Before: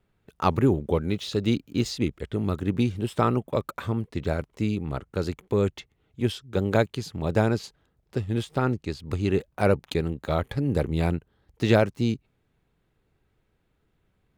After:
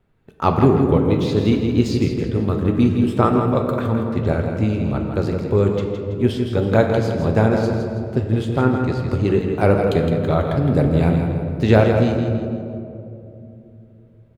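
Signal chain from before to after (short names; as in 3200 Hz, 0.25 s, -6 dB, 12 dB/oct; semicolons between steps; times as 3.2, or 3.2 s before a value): high shelf 2500 Hz -8 dB; feedback echo 0.164 s, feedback 39%, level -7.5 dB; on a send at -3.5 dB: reverb RT60 2.8 s, pre-delay 7 ms; on the sum: gain +5.5 dB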